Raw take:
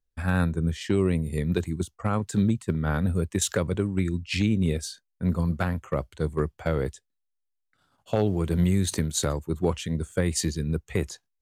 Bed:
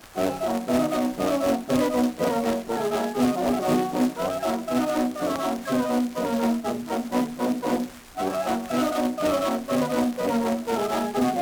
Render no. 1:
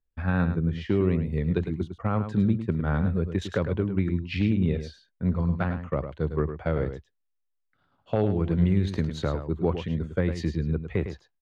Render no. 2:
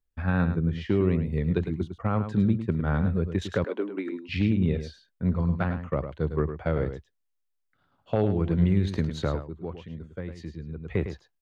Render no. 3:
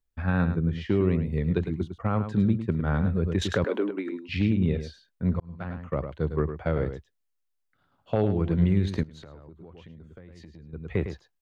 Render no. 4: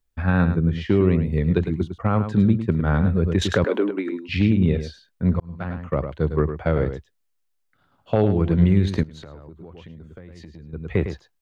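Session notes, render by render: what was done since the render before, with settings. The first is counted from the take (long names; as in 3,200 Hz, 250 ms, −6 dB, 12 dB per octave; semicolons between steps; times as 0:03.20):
high-frequency loss of the air 290 metres; single-tap delay 105 ms −9.5 dB
0:03.64–0:04.29: Butterworth high-pass 250 Hz 48 dB per octave; 0:09.38–0:10.89: duck −10.5 dB, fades 0.13 s
0:03.23–0:03.91: envelope flattener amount 50%; 0:05.40–0:06.03: fade in; 0:09.03–0:10.73: downward compressor 10 to 1, threshold −42 dBFS
level +5.5 dB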